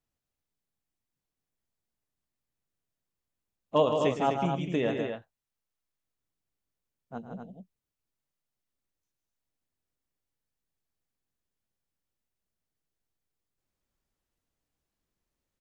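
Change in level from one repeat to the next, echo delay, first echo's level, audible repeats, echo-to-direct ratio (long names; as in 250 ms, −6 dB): repeats not evenly spaced, 111 ms, −12.5 dB, 3, −3.0 dB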